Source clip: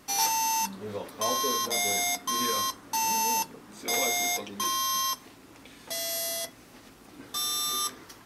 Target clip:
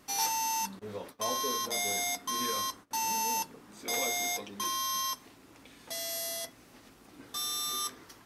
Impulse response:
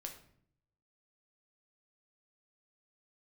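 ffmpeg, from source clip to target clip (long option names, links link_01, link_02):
-filter_complex "[0:a]asettb=1/sr,asplit=3[link_01][link_02][link_03];[link_01]atrim=end=0.794[link_04];[link_02]atrim=start=0.79:end=2.91,asetpts=PTS-STARTPTS,afade=type=in:duration=0.004:curve=qsin,afade=type=out:start_time=2.116:duration=0.004:curve=qsin,agate=range=-21dB:threshold=-42dB:ratio=16:detection=peak[link_05];[link_03]atrim=start=2.906[link_06];[link_04][link_05]acrossfade=duration=0.004:curve1=hsin:curve2=qsin[link_07];[link_07][link_06]acrossfade=duration=0.004:curve1=qsin:curve2=hsin,volume=-4.5dB"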